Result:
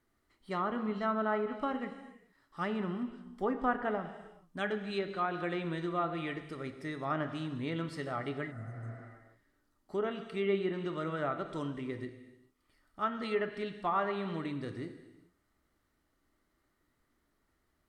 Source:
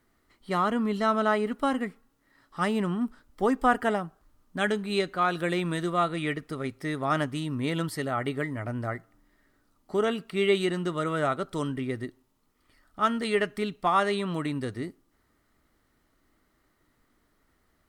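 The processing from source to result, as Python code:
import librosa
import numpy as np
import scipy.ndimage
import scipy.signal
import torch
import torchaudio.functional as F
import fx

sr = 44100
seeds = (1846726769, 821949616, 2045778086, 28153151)

y = fx.rev_gated(x, sr, seeds[0], gate_ms=460, shape='falling', drr_db=7.5)
y = fx.env_lowpass_down(y, sr, base_hz=2200.0, full_db=-20.5)
y = fx.spec_repair(y, sr, seeds[1], start_s=8.54, length_s=0.44, low_hz=220.0, high_hz=6000.0, source='after')
y = y * librosa.db_to_amplitude(-8.0)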